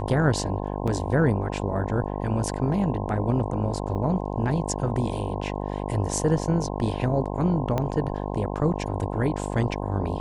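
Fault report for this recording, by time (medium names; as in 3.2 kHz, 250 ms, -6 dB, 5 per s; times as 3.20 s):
buzz 50 Hz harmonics 21 -30 dBFS
0.87–0.88 s: dropout 6.2 ms
3.95–3.96 s: dropout 5.5 ms
7.78 s: pop -13 dBFS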